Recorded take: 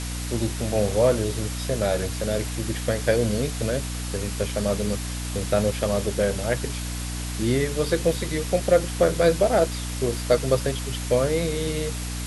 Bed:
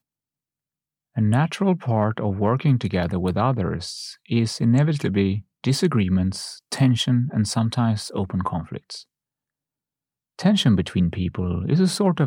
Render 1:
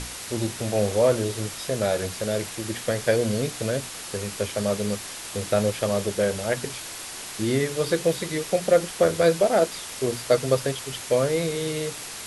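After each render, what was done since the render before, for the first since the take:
mains-hum notches 60/120/180/240/300 Hz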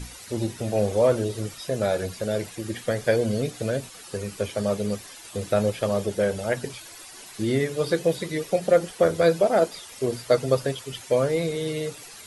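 broadband denoise 12 dB, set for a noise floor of −37 dBFS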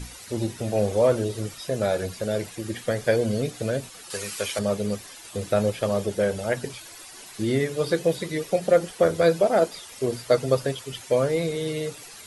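0:04.10–0:04.59: tilt shelving filter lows −9 dB, about 660 Hz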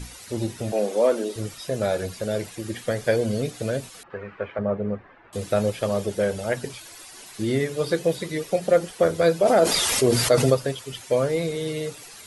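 0:00.72–0:01.36: Butterworth high-pass 210 Hz
0:04.03–0:05.33: low-pass filter 1,800 Hz 24 dB per octave
0:09.45–0:10.54: envelope flattener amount 70%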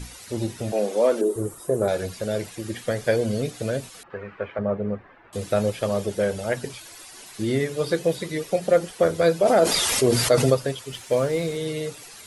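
0:01.21–0:01.88: drawn EQ curve 250 Hz 0 dB, 380 Hz +10 dB, 610 Hz 0 dB, 1,100 Hz +3 dB, 2,400 Hz −14 dB, 5,100 Hz −15 dB, 8,400 Hz +3 dB
0:10.91–0:11.57: variable-slope delta modulation 64 kbit/s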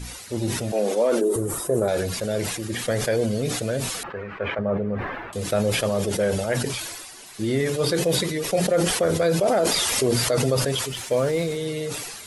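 brickwall limiter −12.5 dBFS, peak gain reduction 6 dB
level that may fall only so fast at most 35 dB per second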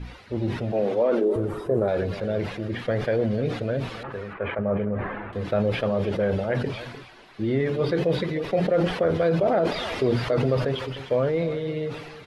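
high-frequency loss of the air 350 metres
single-tap delay 302 ms −14 dB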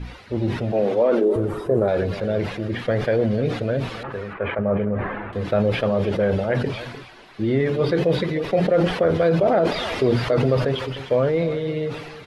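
level +3.5 dB

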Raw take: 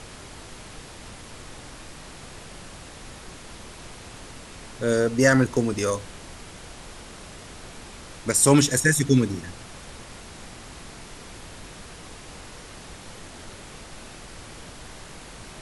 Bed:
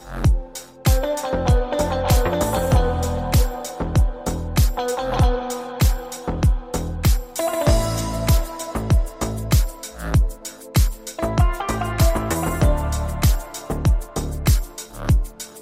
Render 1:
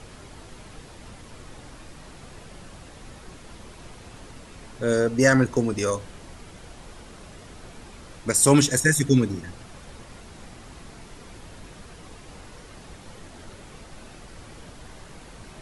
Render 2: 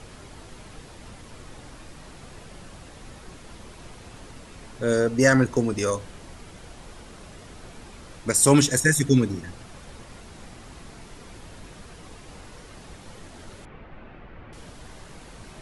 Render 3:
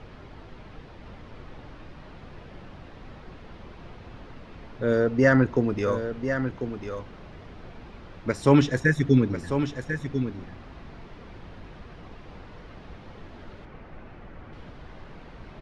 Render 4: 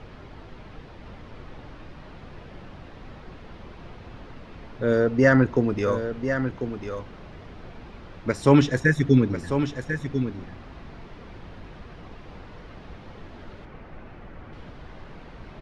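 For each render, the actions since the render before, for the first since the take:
broadband denoise 6 dB, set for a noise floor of −43 dBFS
0:13.65–0:14.53: low-pass filter 2,600 Hz 24 dB per octave
high-frequency loss of the air 270 metres; on a send: single-tap delay 1,045 ms −8.5 dB
level +1.5 dB

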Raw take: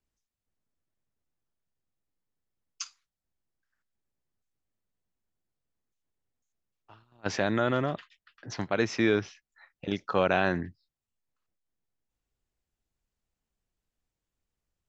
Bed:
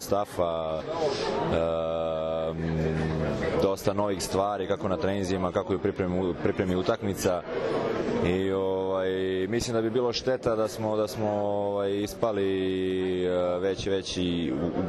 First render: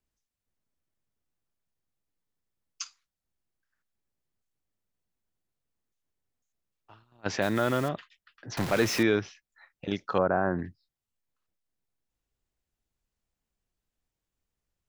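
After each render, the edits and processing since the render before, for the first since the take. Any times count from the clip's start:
0:07.42–0:07.89: one scale factor per block 5 bits
0:08.57–0:09.03: converter with a step at zero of −28.5 dBFS
0:10.18–0:10.59: Butterworth low-pass 1,500 Hz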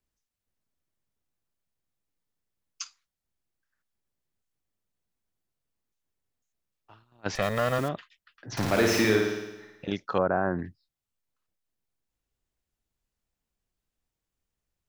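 0:07.35–0:07.79: lower of the sound and its delayed copy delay 1.6 ms
0:08.47–0:09.92: flutter between parallel walls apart 9.4 metres, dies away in 1 s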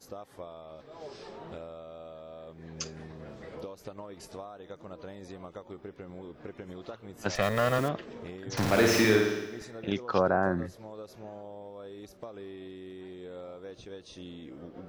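mix in bed −17 dB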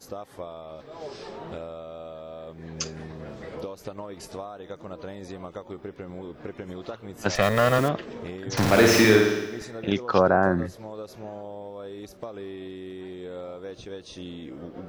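level +6 dB

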